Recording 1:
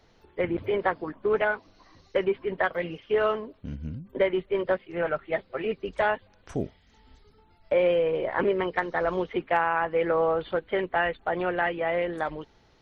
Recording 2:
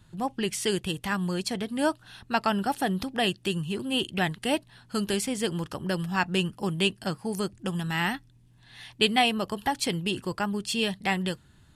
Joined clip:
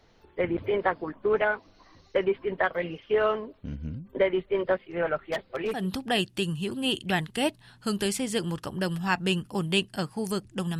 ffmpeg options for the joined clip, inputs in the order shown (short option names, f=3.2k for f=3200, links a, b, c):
-filter_complex "[0:a]asettb=1/sr,asplit=3[a][b][c];[a]atrim=end=5.174[d];[b]atrim=start=5.17:end=5.88,asetpts=PTS-STARTPTS,afade=t=in:d=0.004:c=qsin,afade=t=out:st=0.706:d=0.004:c=qsin,aeval=exprs='0.0794*(abs(mod(val(0)/0.0794+3,4)-2)-1)':c=same[e];[c]atrim=start=5.876[f];[d][e]acrossfade=d=0.004:c1=hsin:c2=qsin[g];[g][f]acrossfade=d=0.004:c1=qsin:c2=hsin,apad=whole_dur=10.79,atrim=end=10.79,atrim=end=5.88,asetpts=PTS-STARTPTS[h];[1:a]atrim=start=2.76:end=7.87,asetpts=PTS-STARTPTS[i];[h][i]acrossfade=d=0.2:c1=tri:c2=tri"